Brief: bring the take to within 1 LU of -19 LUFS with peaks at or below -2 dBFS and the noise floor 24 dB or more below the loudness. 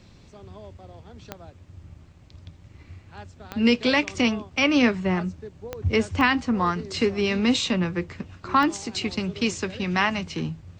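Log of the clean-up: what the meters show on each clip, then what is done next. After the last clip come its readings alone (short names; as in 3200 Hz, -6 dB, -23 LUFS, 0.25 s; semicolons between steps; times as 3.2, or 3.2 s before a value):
clicks 5; loudness -24.0 LUFS; peak -8.0 dBFS; loudness target -19.0 LUFS
-> de-click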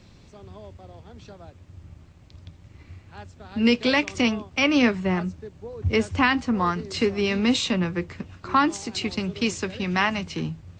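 clicks 0; loudness -24.0 LUFS; peak -8.0 dBFS; loudness target -19.0 LUFS
-> gain +5 dB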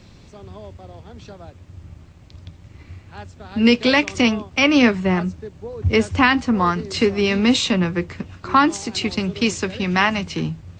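loudness -19.0 LUFS; peak -3.0 dBFS; noise floor -46 dBFS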